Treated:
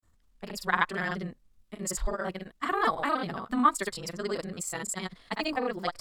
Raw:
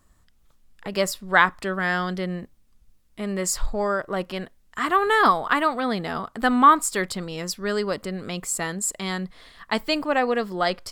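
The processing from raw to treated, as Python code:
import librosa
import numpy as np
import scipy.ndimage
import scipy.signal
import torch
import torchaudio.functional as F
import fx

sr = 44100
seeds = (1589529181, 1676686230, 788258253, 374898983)

y = fx.granulator(x, sr, seeds[0], grain_ms=100.0, per_s=20.0, spray_ms=100.0, spread_st=0)
y = fx.stretch_grains(y, sr, factor=0.55, grain_ms=40.0)
y = y * librosa.db_to_amplitude(-4.5)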